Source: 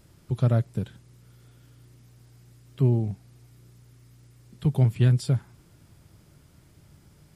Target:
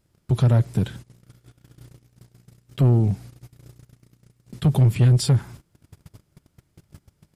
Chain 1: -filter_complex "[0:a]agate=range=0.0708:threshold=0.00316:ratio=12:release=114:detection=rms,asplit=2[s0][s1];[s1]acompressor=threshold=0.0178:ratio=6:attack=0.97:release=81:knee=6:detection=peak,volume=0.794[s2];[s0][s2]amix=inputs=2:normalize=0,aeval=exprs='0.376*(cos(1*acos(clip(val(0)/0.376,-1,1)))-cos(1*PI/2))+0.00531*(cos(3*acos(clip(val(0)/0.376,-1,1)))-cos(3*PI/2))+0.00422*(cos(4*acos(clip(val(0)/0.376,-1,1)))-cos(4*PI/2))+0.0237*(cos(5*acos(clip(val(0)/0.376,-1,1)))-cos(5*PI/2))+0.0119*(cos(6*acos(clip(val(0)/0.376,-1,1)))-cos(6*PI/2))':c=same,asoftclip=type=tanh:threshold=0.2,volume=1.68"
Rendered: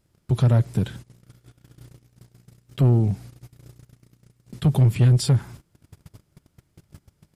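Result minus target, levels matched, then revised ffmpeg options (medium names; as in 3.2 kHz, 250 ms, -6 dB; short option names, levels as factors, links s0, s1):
compression: peak gain reduction +5.5 dB
-filter_complex "[0:a]agate=range=0.0708:threshold=0.00316:ratio=12:release=114:detection=rms,asplit=2[s0][s1];[s1]acompressor=threshold=0.0376:ratio=6:attack=0.97:release=81:knee=6:detection=peak,volume=0.794[s2];[s0][s2]amix=inputs=2:normalize=0,aeval=exprs='0.376*(cos(1*acos(clip(val(0)/0.376,-1,1)))-cos(1*PI/2))+0.00531*(cos(3*acos(clip(val(0)/0.376,-1,1)))-cos(3*PI/2))+0.00422*(cos(4*acos(clip(val(0)/0.376,-1,1)))-cos(4*PI/2))+0.0237*(cos(5*acos(clip(val(0)/0.376,-1,1)))-cos(5*PI/2))+0.0119*(cos(6*acos(clip(val(0)/0.376,-1,1)))-cos(6*PI/2))':c=same,asoftclip=type=tanh:threshold=0.2,volume=1.68"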